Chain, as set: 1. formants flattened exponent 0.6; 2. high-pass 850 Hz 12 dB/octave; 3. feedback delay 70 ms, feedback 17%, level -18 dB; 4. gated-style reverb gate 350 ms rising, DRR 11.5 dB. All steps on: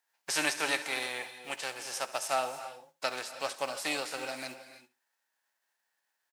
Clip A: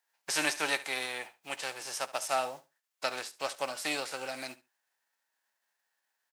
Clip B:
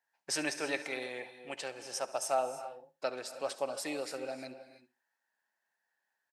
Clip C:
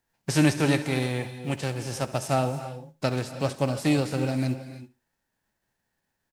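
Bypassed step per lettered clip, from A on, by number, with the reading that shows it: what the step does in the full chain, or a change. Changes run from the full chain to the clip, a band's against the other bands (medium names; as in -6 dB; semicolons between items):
4, echo-to-direct -10.5 dB to -18.0 dB; 1, 2 kHz band -4.5 dB; 2, 125 Hz band +30.0 dB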